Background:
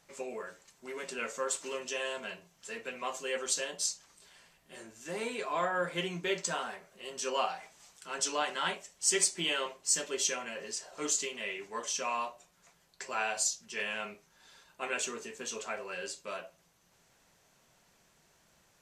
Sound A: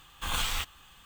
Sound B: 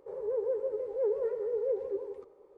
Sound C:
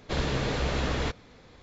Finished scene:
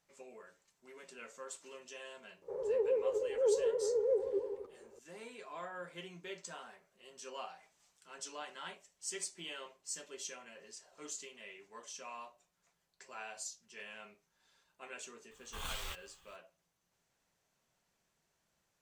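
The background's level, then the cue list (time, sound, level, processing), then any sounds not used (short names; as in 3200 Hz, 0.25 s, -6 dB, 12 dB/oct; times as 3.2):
background -13.5 dB
2.42 add B -0.5 dB
15.31 add A -11.5 dB
not used: C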